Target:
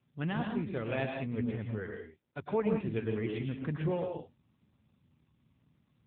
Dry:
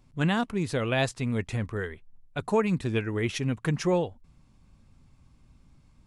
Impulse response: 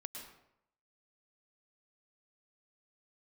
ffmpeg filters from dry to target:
-filter_complex "[0:a]asplit=3[s0][s1][s2];[s0]afade=t=out:st=0.82:d=0.02[s3];[s1]adynamicequalizer=threshold=0.0158:dfrequency=430:dqfactor=1.8:tfrequency=430:tqfactor=1.8:attack=5:release=100:ratio=0.375:range=1.5:mode=boostabove:tftype=bell,afade=t=in:st=0.82:d=0.02,afade=t=out:st=3.38:d=0.02[s4];[s2]afade=t=in:st=3.38:d=0.02[s5];[s3][s4][s5]amix=inputs=3:normalize=0[s6];[1:a]atrim=start_sample=2205,afade=t=out:st=0.26:d=0.01,atrim=end_sample=11907[s7];[s6][s7]afir=irnorm=-1:irlink=0,volume=0.668" -ar 8000 -c:a libopencore_amrnb -b:a 7950

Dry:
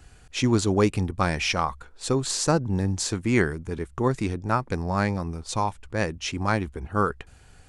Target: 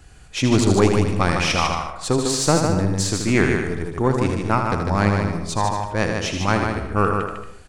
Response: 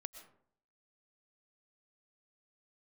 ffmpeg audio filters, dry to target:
-filter_complex "[0:a]aecho=1:1:79:0.473,aeval=exprs='0.501*(cos(1*acos(clip(val(0)/0.501,-1,1)))-cos(1*PI/2))+0.0447*(cos(4*acos(clip(val(0)/0.501,-1,1)))-cos(4*PI/2))':c=same,asplit=2[s0][s1];[1:a]atrim=start_sample=2205,adelay=150[s2];[s1][s2]afir=irnorm=-1:irlink=0,volume=0.944[s3];[s0][s3]amix=inputs=2:normalize=0,volume=1.41"

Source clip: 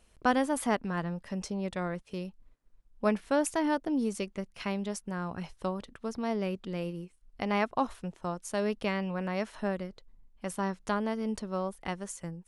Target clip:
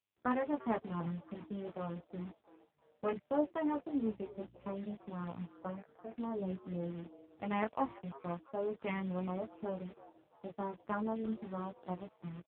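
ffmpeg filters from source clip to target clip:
-filter_complex "[0:a]afwtdn=0.0158,bandreject=f=1500:w=30,acrusher=bits=8:dc=4:mix=0:aa=0.000001,asettb=1/sr,asplit=3[s0][s1][s2];[s0]atrim=end=4.034[s3];[s1]atrim=start=4.03:end=4.75,asetpts=PTS-STARTPTS,afade=t=in:d=0.004:c=qsin,afade=t=out:st=0.716:d=0.004:c=qsin,aeval=exprs='val(0)+0.00316*(sin(2*PI*60*n/s)+sin(2*PI*2*60*n/s)/2+sin(2*PI*3*60*n/s)/3+sin(2*PI*4*60*n/s)/4+sin(2*PI*5*60*n/s)/5)':c=same[s4];[s2]atrim=start=4.746[s5];[s3][s4]acrossfade=d=0.004:c1=hsin:c2=qsin[s6];[s6][s5]acrossfade=d=0.004:c1=qsin:c2=hsin,flanger=delay=16.5:depth=2.1:speed=0.33,asettb=1/sr,asplit=3[s7][s8][s9];[s7]atrim=end=5.594[s10];[s8]atrim=start=5.59:end=6.18,asetpts=PTS-STARTPTS,afade=t=in:d=0.004:c=qsin,afade=t=out:st=0.586:d=0.004:c=qsin,highpass=170,equalizer=f=240:t=q:w=4:g=-4,equalizer=f=370:t=q:w=4:g=-9,equalizer=f=690:t=q:w=4:g=6,equalizer=f=1600:t=q:w=4:g=3,lowpass=f=2400:w=0.5412,lowpass=f=2400:w=1.3066[s11];[s9]atrim=start=6.176[s12];[s10][s11]acrossfade=d=0.004:c1=hsin:c2=qsin[s13];[s13][s12]acrossfade=d=0.004:c1=qsin:c2=hsin,asplit=4[s14][s15][s16][s17];[s15]adelay=340,afreqshift=140,volume=0.112[s18];[s16]adelay=680,afreqshift=280,volume=0.0462[s19];[s17]adelay=1020,afreqshift=420,volume=0.0188[s20];[s14][s18][s19][s20]amix=inputs=4:normalize=0,volume=0.75" -ar 8000 -c:a libopencore_amrnb -b:a 5900

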